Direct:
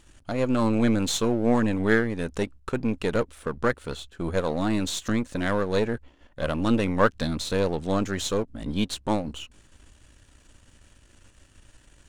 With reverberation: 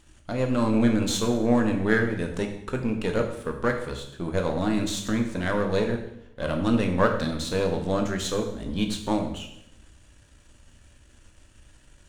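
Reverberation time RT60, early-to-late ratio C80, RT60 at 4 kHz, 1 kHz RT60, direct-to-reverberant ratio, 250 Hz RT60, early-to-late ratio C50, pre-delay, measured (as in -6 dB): 0.80 s, 10.0 dB, 0.70 s, 0.75 s, 3.5 dB, 0.95 s, 7.5 dB, 11 ms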